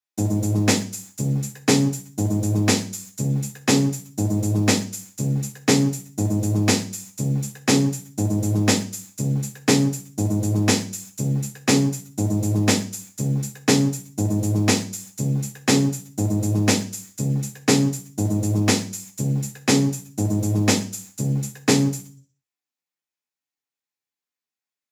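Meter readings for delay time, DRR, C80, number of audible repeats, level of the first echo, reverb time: none, 0.0 dB, 17.5 dB, none, none, 0.40 s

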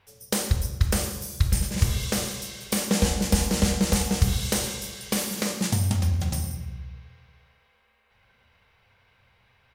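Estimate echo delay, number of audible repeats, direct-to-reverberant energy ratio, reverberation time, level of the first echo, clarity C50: 0.115 s, 1, 5.5 dB, 1.1 s, -16.5 dB, 8.5 dB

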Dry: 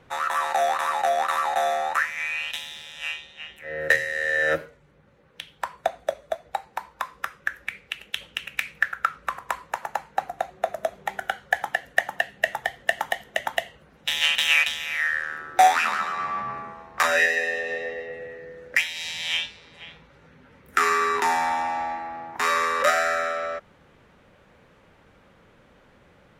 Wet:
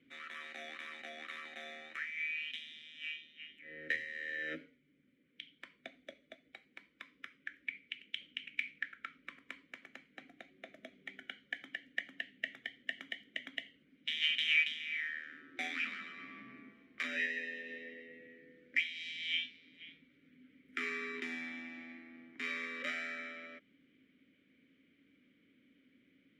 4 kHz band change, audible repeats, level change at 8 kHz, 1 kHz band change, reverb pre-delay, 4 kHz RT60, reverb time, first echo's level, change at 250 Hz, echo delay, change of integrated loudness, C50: -11.0 dB, none, under -25 dB, -31.5 dB, none, none, none, none, -6.5 dB, none, -14.0 dB, none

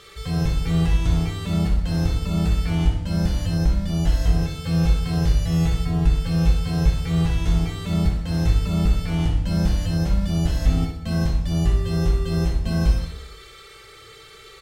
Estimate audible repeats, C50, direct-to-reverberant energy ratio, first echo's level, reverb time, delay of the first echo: 1, 4.0 dB, 0.0 dB, -8.5 dB, 0.85 s, 61 ms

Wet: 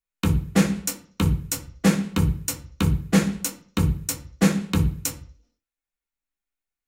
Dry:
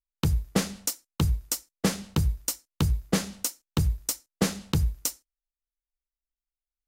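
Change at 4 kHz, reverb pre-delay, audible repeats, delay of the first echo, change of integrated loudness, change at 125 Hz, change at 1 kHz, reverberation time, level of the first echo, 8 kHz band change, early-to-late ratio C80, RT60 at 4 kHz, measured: +1.5 dB, 3 ms, none, none, +4.5 dB, +4.5 dB, +5.0 dB, 0.50 s, none, +1.5 dB, 17.5 dB, 0.50 s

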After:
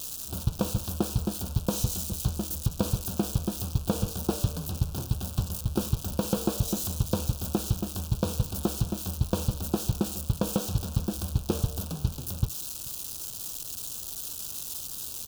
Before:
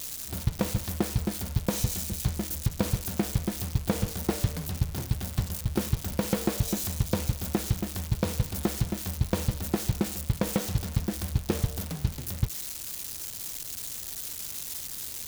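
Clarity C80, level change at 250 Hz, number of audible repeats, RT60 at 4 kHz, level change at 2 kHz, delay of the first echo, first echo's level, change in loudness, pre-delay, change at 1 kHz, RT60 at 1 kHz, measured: none, 0.0 dB, 1, none, -7.0 dB, 0.434 s, -22.5 dB, 0.0 dB, none, 0.0 dB, none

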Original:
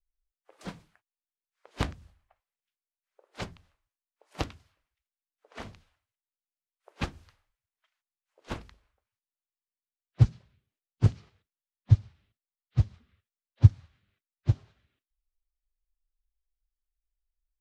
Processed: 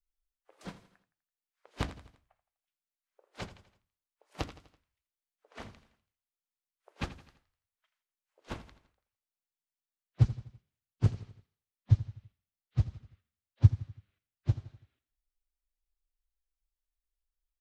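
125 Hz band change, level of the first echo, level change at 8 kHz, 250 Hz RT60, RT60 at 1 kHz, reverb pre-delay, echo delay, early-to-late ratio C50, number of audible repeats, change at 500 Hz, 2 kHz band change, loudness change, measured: -4.0 dB, -15.0 dB, n/a, none, none, none, 83 ms, none, 4, -4.0 dB, -4.0 dB, -4.5 dB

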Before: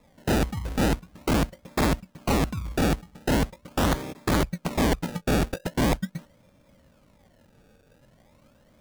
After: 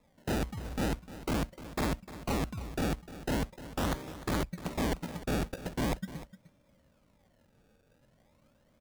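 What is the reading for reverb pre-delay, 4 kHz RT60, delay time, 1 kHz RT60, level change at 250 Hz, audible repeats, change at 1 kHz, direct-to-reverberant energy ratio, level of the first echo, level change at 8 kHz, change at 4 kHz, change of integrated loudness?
none, none, 0.302 s, none, -8.5 dB, 1, -8.5 dB, none, -15.0 dB, -8.5 dB, -8.5 dB, -8.5 dB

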